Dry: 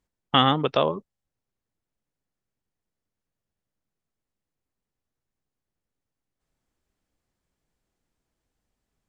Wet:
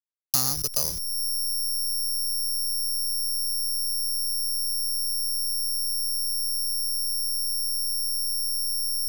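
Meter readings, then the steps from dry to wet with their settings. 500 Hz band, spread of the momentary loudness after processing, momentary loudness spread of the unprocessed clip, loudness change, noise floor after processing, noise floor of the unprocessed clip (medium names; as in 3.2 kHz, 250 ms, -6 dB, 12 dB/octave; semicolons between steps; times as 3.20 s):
under -15 dB, 0 LU, 9 LU, -1.5 dB, -31 dBFS, under -85 dBFS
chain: send-on-delta sampling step -24 dBFS; careless resampling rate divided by 8×, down filtered, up zero stuff; three bands compressed up and down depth 70%; trim -5 dB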